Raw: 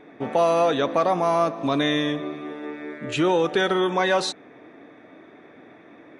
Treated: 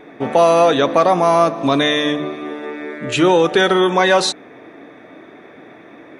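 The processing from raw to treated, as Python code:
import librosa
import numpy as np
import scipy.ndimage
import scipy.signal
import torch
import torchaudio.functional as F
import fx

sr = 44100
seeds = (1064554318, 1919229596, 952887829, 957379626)

y = fx.high_shelf(x, sr, hz=6700.0, db=4.5)
y = fx.hum_notches(y, sr, base_hz=50, count=6)
y = F.gain(torch.from_numpy(y), 7.5).numpy()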